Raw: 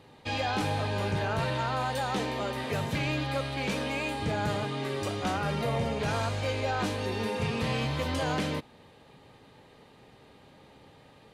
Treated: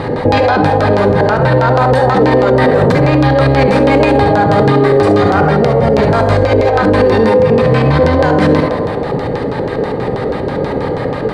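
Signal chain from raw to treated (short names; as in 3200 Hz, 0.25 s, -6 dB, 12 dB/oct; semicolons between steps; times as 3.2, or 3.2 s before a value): band shelf 4100 Hz -15 dB; negative-ratio compressor -35 dBFS, ratio -0.5; LFO low-pass square 6.2 Hz 480–4500 Hz; narrowing echo 83 ms, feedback 79%, band-pass 810 Hz, level -9.5 dB; non-linear reverb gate 90 ms rising, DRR 9.5 dB; maximiser +31.5 dB; gain -1 dB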